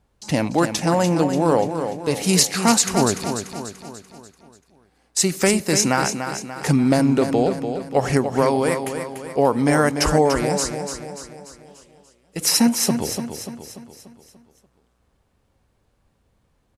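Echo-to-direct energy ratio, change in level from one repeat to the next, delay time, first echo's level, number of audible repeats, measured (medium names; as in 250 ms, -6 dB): -7.0 dB, -6.0 dB, 292 ms, -8.0 dB, 5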